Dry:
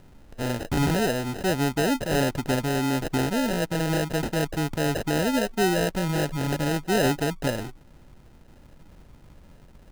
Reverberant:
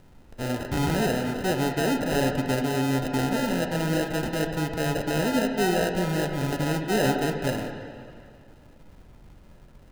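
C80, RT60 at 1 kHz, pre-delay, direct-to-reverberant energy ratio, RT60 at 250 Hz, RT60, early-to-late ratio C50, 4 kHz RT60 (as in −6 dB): 6.0 dB, 2.2 s, 7 ms, 3.5 dB, 2.3 s, 2.2 s, 5.0 dB, 2.0 s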